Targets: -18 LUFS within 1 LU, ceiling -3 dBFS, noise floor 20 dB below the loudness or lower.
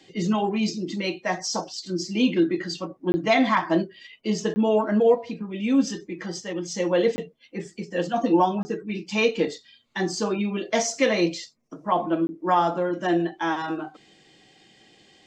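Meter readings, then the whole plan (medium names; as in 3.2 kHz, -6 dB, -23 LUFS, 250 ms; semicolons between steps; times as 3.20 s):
dropouts 5; longest dropout 20 ms; loudness -24.5 LUFS; peak level -8.0 dBFS; loudness target -18.0 LUFS
-> interpolate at 3.12/4.54/7.16/8.63/12.27 s, 20 ms; trim +6.5 dB; peak limiter -3 dBFS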